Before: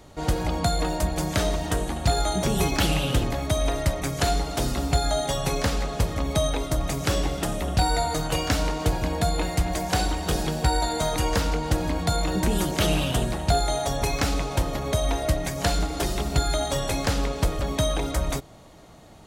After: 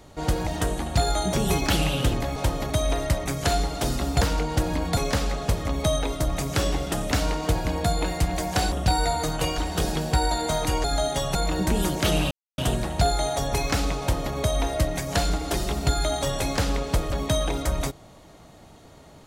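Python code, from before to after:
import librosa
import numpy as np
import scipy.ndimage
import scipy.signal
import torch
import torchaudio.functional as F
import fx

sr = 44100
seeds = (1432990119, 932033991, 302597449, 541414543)

y = fx.edit(x, sr, fx.cut(start_s=0.47, length_s=1.1),
    fx.swap(start_s=4.97, length_s=0.51, other_s=11.35, other_length_s=0.76),
    fx.move(start_s=7.63, length_s=0.86, to_s=10.09),
    fx.insert_silence(at_s=13.07, length_s=0.27),
    fx.duplicate(start_s=14.49, length_s=0.34, to_s=3.46), tone=tone)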